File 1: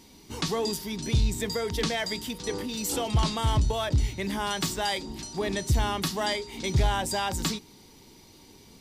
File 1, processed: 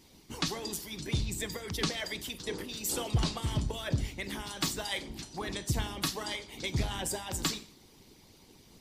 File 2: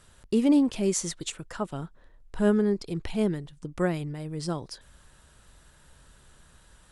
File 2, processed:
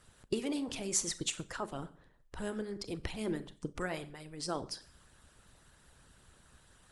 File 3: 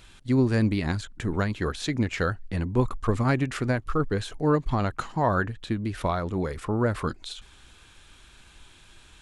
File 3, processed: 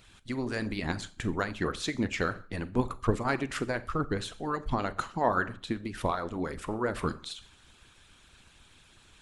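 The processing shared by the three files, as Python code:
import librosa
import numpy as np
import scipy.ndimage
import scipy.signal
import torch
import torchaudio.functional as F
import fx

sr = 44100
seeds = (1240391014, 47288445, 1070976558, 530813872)

y = fx.rev_schroeder(x, sr, rt60_s=0.48, comb_ms=29, drr_db=9.0)
y = fx.hpss(y, sr, part='harmonic', gain_db=-16)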